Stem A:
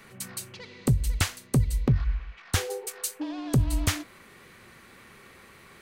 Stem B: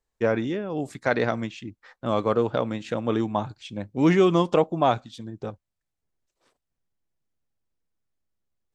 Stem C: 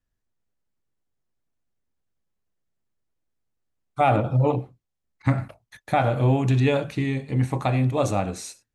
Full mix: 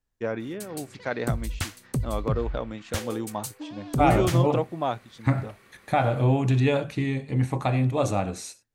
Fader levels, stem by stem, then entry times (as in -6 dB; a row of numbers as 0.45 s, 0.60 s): -5.0 dB, -6.5 dB, -1.5 dB; 0.40 s, 0.00 s, 0.00 s